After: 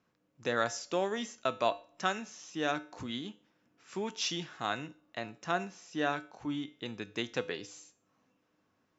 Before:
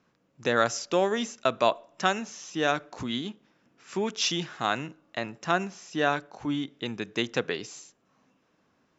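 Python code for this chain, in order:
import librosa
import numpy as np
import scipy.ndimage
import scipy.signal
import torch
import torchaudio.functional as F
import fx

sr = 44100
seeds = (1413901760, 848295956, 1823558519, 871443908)

y = fx.comb_fb(x, sr, f0_hz=100.0, decay_s=0.4, harmonics='odd', damping=0.0, mix_pct=60)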